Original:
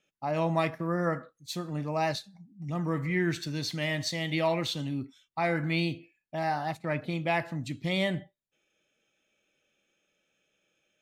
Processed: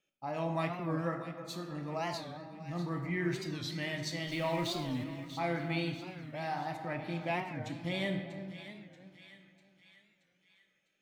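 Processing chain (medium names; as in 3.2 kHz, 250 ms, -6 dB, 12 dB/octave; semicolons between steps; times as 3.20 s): 4.27–5.04 s: jump at every zero crossing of -38 dBFS; two-band feedback delay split 1.4 kHz, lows 324 ms, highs 639 ms, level -12 dB; on a send at -4 dB: reverberation RT60 1.6 s, pre-delay 3 ms; on the sum: warped record 45 rpm, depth 160 cents; trim -7.5 dB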